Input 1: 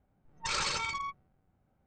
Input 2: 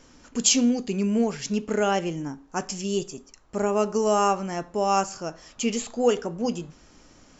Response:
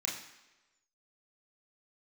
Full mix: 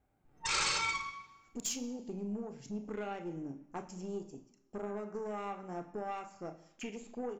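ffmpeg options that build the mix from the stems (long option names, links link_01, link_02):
-filter_complex "[0:a]volume=-4dB,asplit=2[link_01][link_02];[link_02]volume=-3dB[link_03];[1:a]afwtdn=0.0224,acompressor=threshold=-29dB:ratio=6,aeval=exprs='(tanh(15.8*val(0)+0.35)-tanh(0.35))/15.8':channel_layout=same,adelay=1200,volume=-7.5dB,asplit=2[link_04][link_05];[link_05]volume=-7dB[link_06];[2:a]atrim=start_sample=2205[link_07];[link_03][link_06]amix=inputs=2:normalize=0[link_08];[link_08][link_07]afir=irnorm=-1:irlink=0[link_09];[link_01][link_04][link_09]amix=inputs=3:normalize=0"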